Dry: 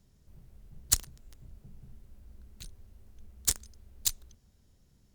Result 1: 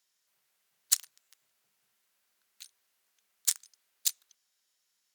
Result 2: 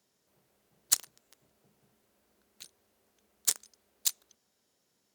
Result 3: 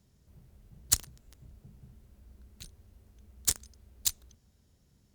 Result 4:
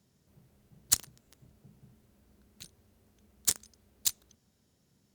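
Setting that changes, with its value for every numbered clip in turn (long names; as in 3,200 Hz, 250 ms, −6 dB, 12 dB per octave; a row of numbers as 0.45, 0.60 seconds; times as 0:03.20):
high-pass filter, corner frequency: 1,500, 420, 45, 140 Hertz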